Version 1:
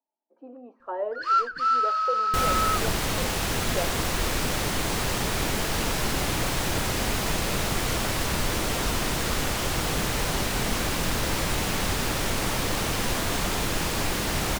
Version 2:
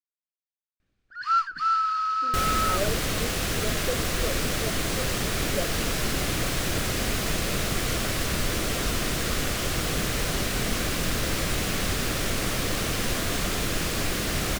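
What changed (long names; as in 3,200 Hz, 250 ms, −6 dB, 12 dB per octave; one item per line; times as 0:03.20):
speech: entry +1.80 s
master: add parametric band 890 Hz −9.5 dB 0.37 octaves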